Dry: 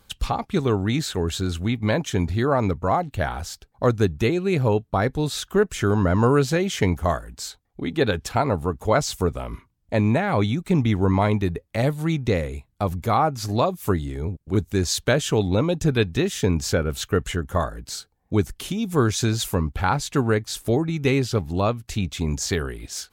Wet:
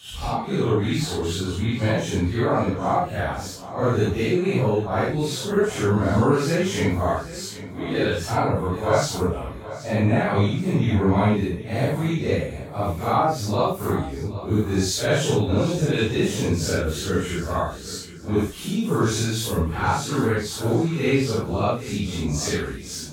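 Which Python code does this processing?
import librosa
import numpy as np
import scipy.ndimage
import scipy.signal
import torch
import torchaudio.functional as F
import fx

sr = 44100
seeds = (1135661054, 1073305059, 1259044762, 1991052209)

y = fx.phase_scramble(x, sr, seeds[0], window_ms=200)
y = scipy.signal.sosfilt(scipy.signal.butter(2, 60.0, 'highpass', fs=sr, output='sos'), y)
y = fx.echo_feedback(y, sr, ms=778, feedback_pct=35, wet_db=-15.0)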